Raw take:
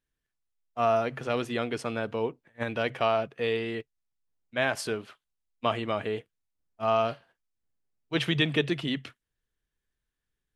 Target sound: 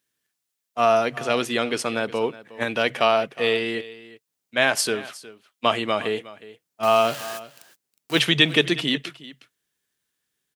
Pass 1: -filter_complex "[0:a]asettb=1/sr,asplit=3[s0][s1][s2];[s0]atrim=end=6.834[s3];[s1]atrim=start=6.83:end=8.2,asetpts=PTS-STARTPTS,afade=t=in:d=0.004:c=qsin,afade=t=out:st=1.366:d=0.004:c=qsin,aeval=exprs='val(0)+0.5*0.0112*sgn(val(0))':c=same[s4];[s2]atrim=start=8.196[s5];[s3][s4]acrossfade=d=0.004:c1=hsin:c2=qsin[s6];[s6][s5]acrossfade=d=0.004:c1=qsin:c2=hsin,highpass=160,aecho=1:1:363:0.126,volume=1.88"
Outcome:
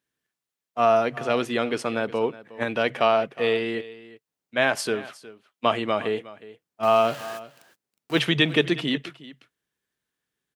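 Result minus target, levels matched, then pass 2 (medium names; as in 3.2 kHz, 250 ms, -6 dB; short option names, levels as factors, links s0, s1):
8 kHz band -6.5 dB
-filter_complex "[0:a]asettb=1/sr,asplit=3[s0][s1][s2];[s0]atrim=end=6.834[s3];[s1]atrim=start=6.83:end=8.2,asetpts=PTS-STARTPTS,afade=t=in:d=0.004:c=qsin,afade=t=out:st=1.366:d=0.004:c=qsin,aeval=exprs='val(0)+0.5*0.0112*sgn(val(0))':c=same[s4];[s2]atrim=start=8.196[s5];[s3][s4]acrossfade=d=0.004:c1=hsin:c2=qsin[s6];[s6][s5]acrossfade=d=0.004:c1=qsin:c2=hsin,highpass=160,highshelf=f=2900:g=9.5,aecho=1:1:363:0.126,volume=1.88"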